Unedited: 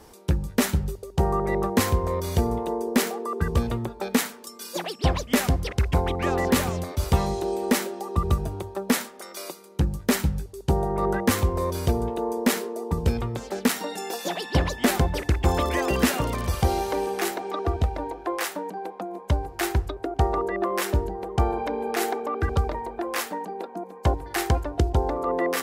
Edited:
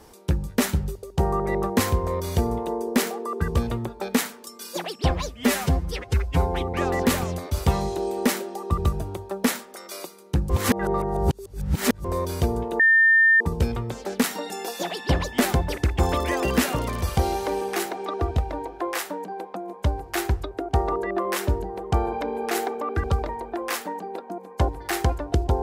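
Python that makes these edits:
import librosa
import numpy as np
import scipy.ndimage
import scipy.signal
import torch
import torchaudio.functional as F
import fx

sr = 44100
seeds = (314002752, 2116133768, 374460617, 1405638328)

y = fx.edit(x, sr, fx.stretch_span(start_s=5.1, length_s=1.09, factor=1.5),
    fx.reverse_span(start_s=9.95, length_s=1.55),
    fx.bleep(start_s=12.25, length_s=0.61, hz=1800.0, db=-13.0), tone=tone)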